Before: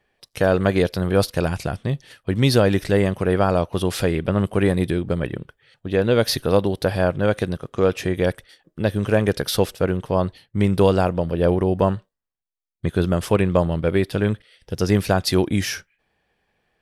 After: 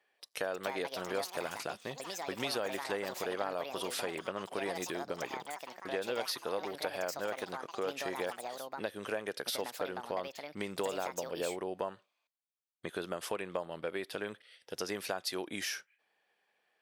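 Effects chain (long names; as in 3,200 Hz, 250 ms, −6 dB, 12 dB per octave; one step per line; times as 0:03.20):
Bessel high-pass filter 580 Hz, order 2
downward compressor 3 to 1, threshold −30 dBFS, peak gain reduction 11 dB
delay with pitch and tempo change per echo 383 ms, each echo +6 semitones, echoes 2, each echo −6 dB
level −5 dB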